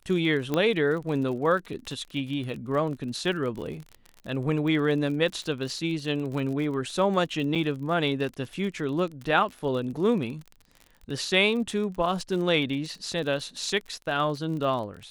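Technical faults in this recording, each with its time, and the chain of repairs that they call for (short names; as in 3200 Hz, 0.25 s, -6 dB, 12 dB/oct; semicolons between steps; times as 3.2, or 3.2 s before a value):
crackle 38/s -34 dBFS
0.54 pop -13 dBFS
7.55–7.56 gap 5.9 ms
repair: de-click; interpolate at 7.55, 5.9 ms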